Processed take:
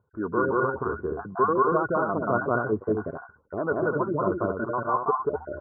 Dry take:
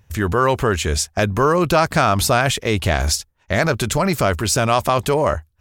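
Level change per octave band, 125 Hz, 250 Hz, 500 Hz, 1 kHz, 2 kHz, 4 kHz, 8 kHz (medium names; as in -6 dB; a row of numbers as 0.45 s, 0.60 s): -14.5 dB, -6.5 dB, -6.5 dB, -6.5 dB, -10.0 dB, under -40 dB, under -40 dB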